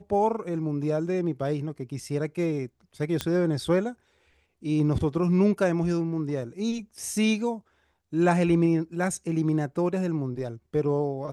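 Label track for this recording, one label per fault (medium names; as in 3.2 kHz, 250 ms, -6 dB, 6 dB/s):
3.210000	3.210000	pop -12 dBFS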